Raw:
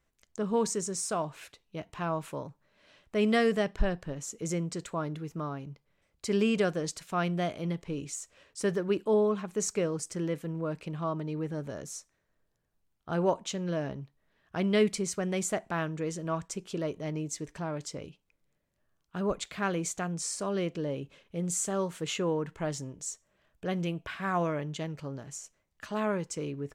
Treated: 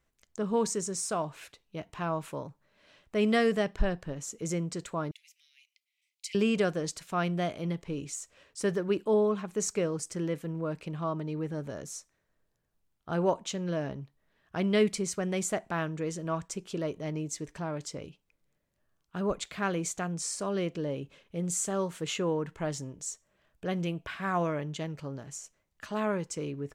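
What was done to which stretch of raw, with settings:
0:05.11–0:06.35: Butterworth high-pass 2,100 Hz 72 dB per octave

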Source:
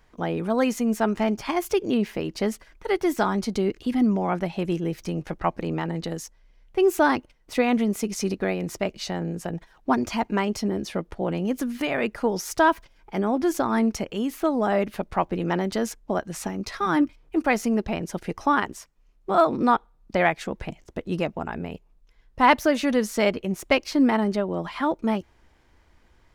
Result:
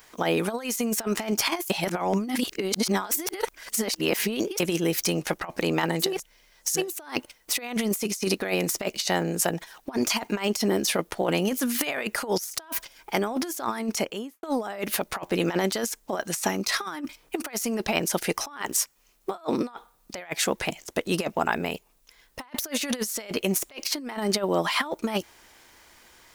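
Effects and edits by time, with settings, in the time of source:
0:01.70–0:04.60: reverse
0:06.11–0:06.83: reverse, crossfade 0.24 s
0:13.85–0:14.43: fade out and dull
whole clip: RIAA equalisation recording; compressor whose output falls as the input rises −30 dBFS, ratio −0.5; level +3.5 dB

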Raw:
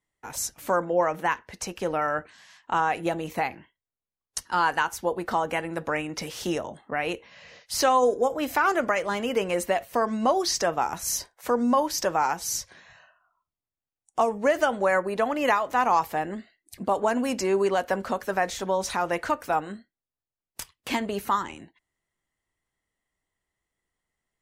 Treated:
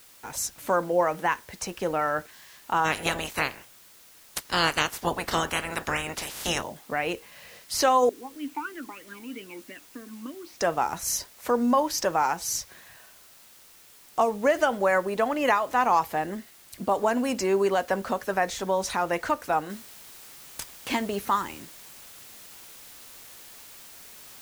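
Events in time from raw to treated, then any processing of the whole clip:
0:02.84–0:06.62: ceiling on every frequency bin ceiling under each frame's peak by 24 dB
0:08.09–0:10.61: formant filter swept between two vowels i-u 3.1 Hz
0:19.70: noise floor change −53 dB −47 dB

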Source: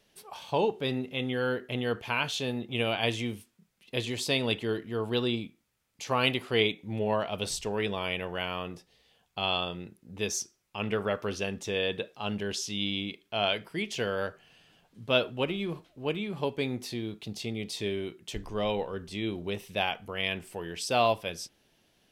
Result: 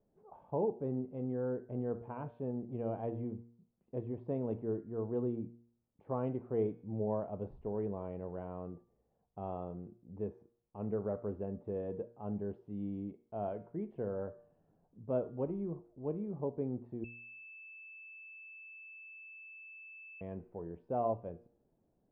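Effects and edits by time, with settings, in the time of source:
0:17.04–0:20.21: beep over 2,630 Hz −7.5 dBFS
whole clip: Bessel low-pass filter 600 Hz, order 4; hum removal 117.6 Hz, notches 40; level −4 dB

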